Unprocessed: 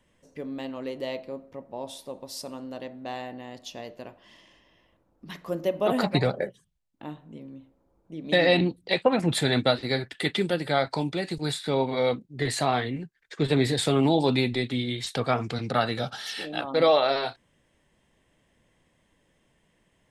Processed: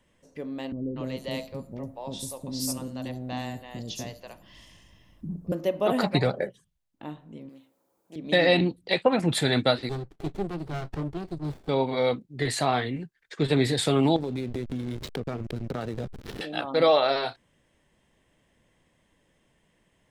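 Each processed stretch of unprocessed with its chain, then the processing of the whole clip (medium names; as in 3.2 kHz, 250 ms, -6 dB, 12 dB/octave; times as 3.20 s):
0.72–5.52 s: tone controls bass +14 dB, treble +11 dB + three bands offset in time lows, mids, highs 240/310 ms, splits 480/5300 Hz
7.49–8.16 s: high-pass 91 Hz + RIAA curve recording + loudspeaker Doppler distortion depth 0.23 ms
9.89–11.69 s: treble shelf 2 kHz -12 dB + static phaser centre 360 Hz, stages 8 + sliding maximum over 33 samples
14.16–16.41 s: hysteresis with a dead band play -24 dBFS + resonant low shelf 580 Hz +6 dB, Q 1.5 + compression 10:1, threshold -27 dBFS
whole clip: none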